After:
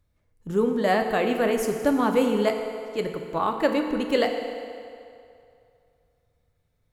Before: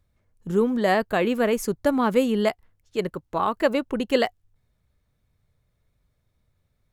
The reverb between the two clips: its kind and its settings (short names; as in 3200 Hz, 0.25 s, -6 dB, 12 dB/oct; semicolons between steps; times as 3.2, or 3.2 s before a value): FDN reverb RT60 2.5 s, low-frequency decay 0.75×, high-frequency decay 0.8×, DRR 4 dB; gain -2 dB